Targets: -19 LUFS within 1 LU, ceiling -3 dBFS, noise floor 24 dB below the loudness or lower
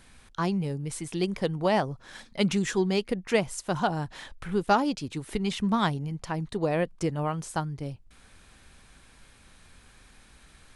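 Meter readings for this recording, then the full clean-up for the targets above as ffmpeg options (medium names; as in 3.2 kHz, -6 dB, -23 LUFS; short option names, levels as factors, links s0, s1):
loudness -29.0 LUFS; peak level -10.5 dBFS; loudness target -19.0 LUFS
-> -af "volume=3.16,alimiter=limit=0.708:level=0:latency=1"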